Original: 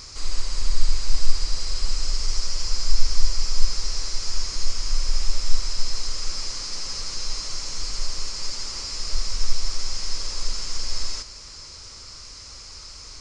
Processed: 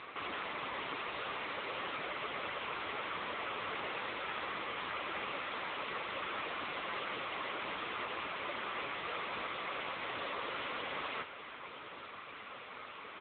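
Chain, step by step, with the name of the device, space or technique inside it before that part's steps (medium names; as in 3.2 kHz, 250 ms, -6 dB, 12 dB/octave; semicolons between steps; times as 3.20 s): satellite phone (band-pass 310–3200 Hz; delay 577 ms -17.5 dB; trim +9 dB; AMR-NB 6.7 kbps 8 kHz)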